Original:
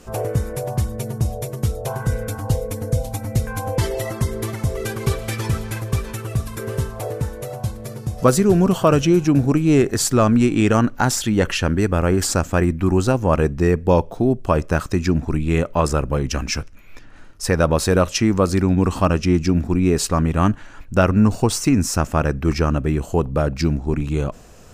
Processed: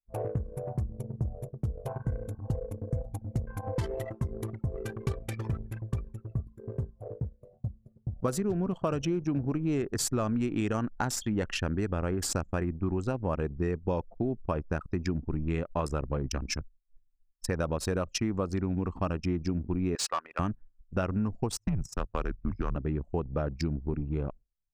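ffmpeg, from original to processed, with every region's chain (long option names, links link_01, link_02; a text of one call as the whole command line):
ffmpeg -i in.wav -filter_complex "[0:a]asettb=1/sr,asplit=3[link_01][link_02][link_03];[link_01]atrim=end=6.454[link_04];[link_02]atrim=start=6.45:end=8.02,asetpts=PTS-STARTPTS,afade=type=in:duration=0.004:curve=qsin,afade=type=out:start_time=1.566:duration=0.004:curve=qsin,highpass=55,adynamicequalizer=threshold=0.00891:dfrequency=1100:dqfactor=0.82:tfrequency=1100:tqfactor=0.82:attack=5:release=100:ratio=0.375:range=2.5:mode=cutabove:tftype=bell[link_05];[link_03]atrim=start=8.016[link_06];[link_04][link_05]acrossfade=duration=0.004:curve1=hsin:curve2=qsin[link_07];[link_07][link_06]acrossfade=duration=0.004:curve1=qsin:curve2=hsin,asettb=1/sr,asplit=3[link_08][link_09][link_10];[link_08]atrim=end=19.954[link_11];[link_09]atrim=start=19.95:end=20.39,asetpts=PTS-STARTPTS,afade=type=in:duration=0.004:curve=qsin,afade=type=out:start_time=0.436:duration=0.004:curve=qsin,highpass=710,adynamicsmooth=sensitivity=6:basefreq=6200,asplit=2[link_12][link_13];[link_13]highpass=frequency=720:poles=1,volume=14dB,asoftclip=type=tanh:threshold=-9.5dB[link_14];[link_12][link_14]amix=inputs=2:normalize=0,lowpass=frequency=6700:poles=1,volume=-6dB[link_15];[link_10]atrim=start=20.386[link_16];[link_11][link_15]acrossfade=duration=0.004:curve1=hsin:curve2=qsin[link_17];[link_17][link_16]acrossfade=duration=0.004:curve1=qsin:curve2=hsin,asettb=1/sr,asplit=3[link_18][link_19][link_20];[link_18]atrim=end=21.574[link_21];[link_19]atrim=start=21.57:end=22.76,asetpts=PTS-STARTPTS,afade=type=in:duration=0.004:curve=qsin,afade=type=out:start_time=1.186:duration=0.004:curve=qsin,agate=range=-12dB:threshold=-25dB:ratio=16:release=100:detection=peak,asoftclip=type=hard:threshold=-10.5dB,afreqshift=-110[link_22];[link_20]atrim=start=22.756[link_23];[link_21][link_22]acrossfade=duration=0.004:curve1=hsin:curve2=qsin[link_24];[link_24][link_23]acrossfade=duration=0.004:curve1=qsin:curve2=hsin,agate=range=-33dB:threshold=-27dB:ratio=3:detection=peak,anlmdn=1000,acompressor=threshold=-17dB:ratio=6,volume=-8.5dB" out.wav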